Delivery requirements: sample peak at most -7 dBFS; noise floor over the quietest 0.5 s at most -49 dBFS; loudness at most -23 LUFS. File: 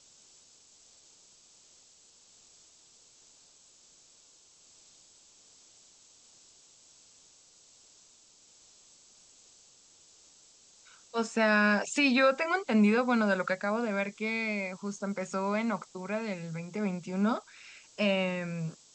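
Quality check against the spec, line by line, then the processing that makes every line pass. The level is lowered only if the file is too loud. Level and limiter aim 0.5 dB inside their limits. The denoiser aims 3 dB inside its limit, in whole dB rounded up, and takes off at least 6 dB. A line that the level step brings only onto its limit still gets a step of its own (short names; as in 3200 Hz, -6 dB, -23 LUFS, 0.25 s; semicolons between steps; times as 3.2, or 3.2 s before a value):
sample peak -14.0 dBFS: OK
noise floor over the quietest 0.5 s -60 dBFS: OK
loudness -29.5 LUFS: OK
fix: none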